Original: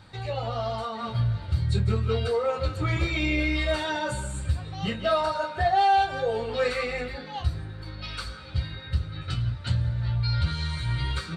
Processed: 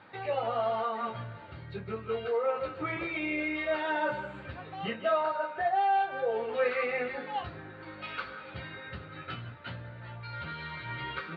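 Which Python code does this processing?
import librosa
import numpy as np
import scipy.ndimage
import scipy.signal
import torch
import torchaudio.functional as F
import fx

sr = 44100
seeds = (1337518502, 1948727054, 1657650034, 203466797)

y = scipy.signal.sosfilt(scipy.signal.butter(4, 2700.0, 'lowpass', fs=sr, output='sos'), x)
y = fx.rider(y, sr, range_db=4, speed_s=0.5)
y = scipy.signal.sosfilt(scipy.signal.butter(2, 290.0, 'highpass', fs=sr, output='sos'), y)
y = y * librosa.db_to_amplitude(-2.0)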